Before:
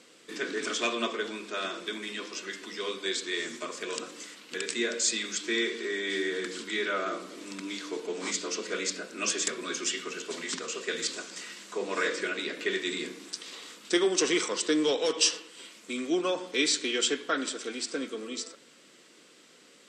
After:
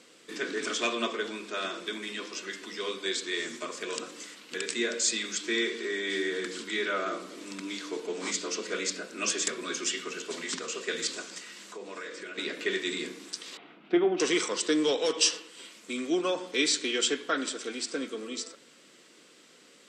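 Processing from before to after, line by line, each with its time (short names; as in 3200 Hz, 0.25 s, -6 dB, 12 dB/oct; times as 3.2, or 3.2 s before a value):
11.38–12.38 compressor 2.5:1, threshold -42 dBFS
13.57–14.2 speaker cabinet 150–2400 Hz, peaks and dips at 160 Hz +10 dB, 330 Hz +4 dB, 500 Hz -8 dB, 710 Hz +9 dB, 1100 Hz -6 dB, 1800 Hz -8 dB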